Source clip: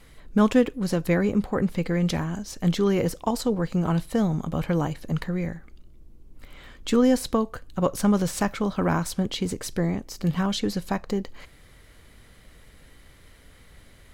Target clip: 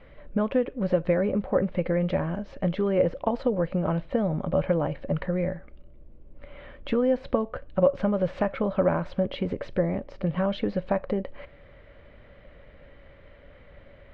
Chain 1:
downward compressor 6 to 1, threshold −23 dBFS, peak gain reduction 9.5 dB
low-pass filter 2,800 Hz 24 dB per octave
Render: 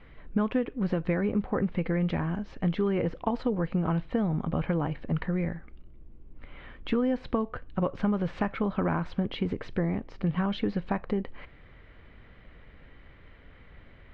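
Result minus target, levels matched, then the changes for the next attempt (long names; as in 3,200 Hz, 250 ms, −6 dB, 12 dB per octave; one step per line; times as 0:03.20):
500 Hz band −4.5 dB
add after low-pass filter: parametric band 570 Hz +15 dB 0.32 octaves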